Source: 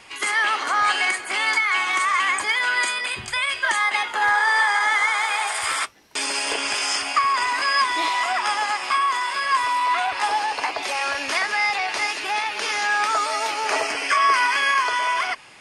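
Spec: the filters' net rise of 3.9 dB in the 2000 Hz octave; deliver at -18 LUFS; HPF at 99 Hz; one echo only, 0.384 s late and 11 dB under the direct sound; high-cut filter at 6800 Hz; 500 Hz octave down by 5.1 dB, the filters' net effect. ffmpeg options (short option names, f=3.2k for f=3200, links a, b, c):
-af "highpass=99,lowpass=6.8k,equalizer=f=500:t=o:g=-7.5,equalizer=f=2k:t=o:g=5,aecho=1:1:384:0.282"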